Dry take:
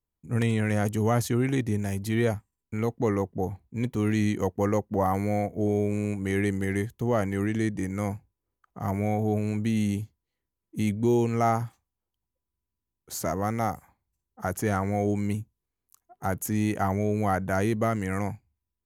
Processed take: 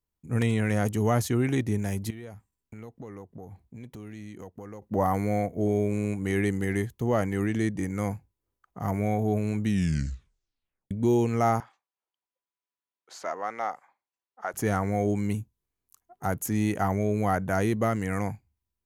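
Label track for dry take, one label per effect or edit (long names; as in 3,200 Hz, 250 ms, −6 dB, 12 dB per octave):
2.100000	4.820000	downward compressor 4 to 1, threshold −41 dBFS
9.620000	9.620000	tape stop 1.29 s
11.600000	14.540000	band-pass filter 630–3,800 Hz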